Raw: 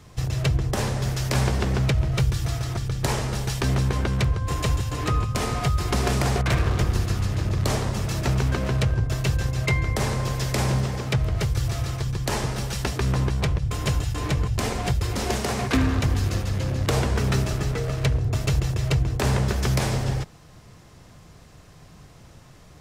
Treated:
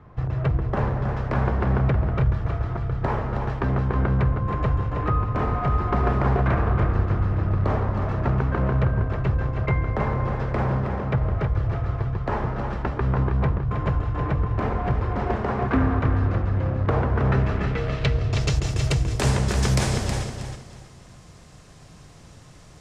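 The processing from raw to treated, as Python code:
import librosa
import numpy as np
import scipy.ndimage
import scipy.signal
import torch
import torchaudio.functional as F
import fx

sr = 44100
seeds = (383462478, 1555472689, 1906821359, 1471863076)

p1 = fx.filter_sweep_lowpass(x, sr, from_hz=1300.0, to_hz=9000.0, start_s=17.15, end_s=18.82, q=1.3)
y = p1 + fx.echo_feedback(p1, sr, ms=319, feedback_pct=27, wet_db=-7, dry=0)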